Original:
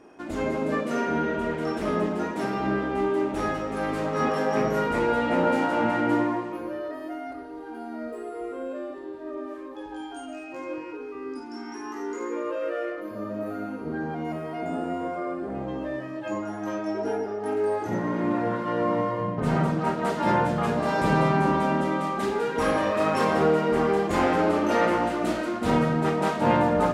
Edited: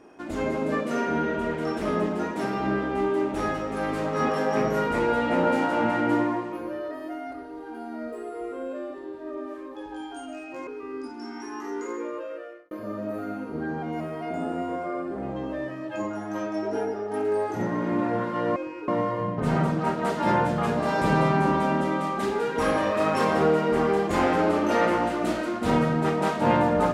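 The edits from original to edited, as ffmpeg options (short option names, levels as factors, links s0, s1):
-filter_complex "[0:a]asplit=5[s0][s1][s2][s3][s4];[s0]atrim=end=10.672[s5];[s1]atrim=start=10.988:end=13.03,asetpts=PTS-STARTPTS,afade=t=out:st=1.182:d=0.86[s6];[s2]atrim=start=13.03:end=18.882,asetpts=PTS-STARTPTS,afade=t=in:d=0.004:c=hsin[s7];[s3]atrim=start=10.668:end=10.992[s8];[s4]atrim=start=18.878[s9];[s6][s7]concat=n=2:v=0:a=1[s10];[s5][s10]acrossfade=d=0.004:c1=hsin:c2=hsin[s11];[s11][s8]acrossfade=d=0.004:c1=hsin:c2=hsin[s12];[s12][s9]acrossfade=d=0.004:c1=hsin:c2=hsin"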